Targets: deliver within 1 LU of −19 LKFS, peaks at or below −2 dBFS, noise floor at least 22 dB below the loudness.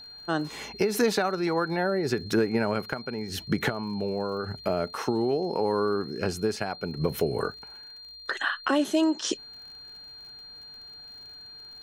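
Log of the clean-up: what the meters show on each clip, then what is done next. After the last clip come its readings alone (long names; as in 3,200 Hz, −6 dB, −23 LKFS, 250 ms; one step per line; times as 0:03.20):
crackle rate 49 per second; interfering tone 4,200 Hz; level of the tone −43 dBFS; integrated loudness −28.0 LKFS; sample peak −13.5 dBFS; target loudness −19.0 LKFS
→ click removal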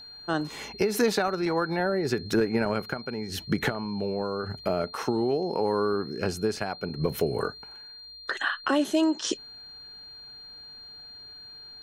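crackle rate 0.085 per second; interfering tone 4,200 Hz; level of the tone −43 dBFS
→ notch filter 4,200 Hz, Q 30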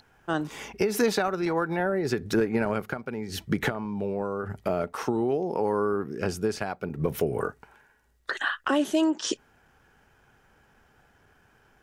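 interfering tone none found; integrated loudness −28.5 LKFS; sample peak −13.5 dBFS; target loudness −19.0 LKFS
→ level +9.5 dB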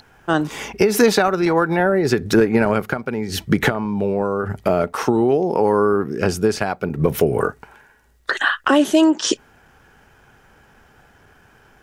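integrated loudness −19.0 LKFS; sample peak −4.0 dBFS; background noise floor −53 dBFS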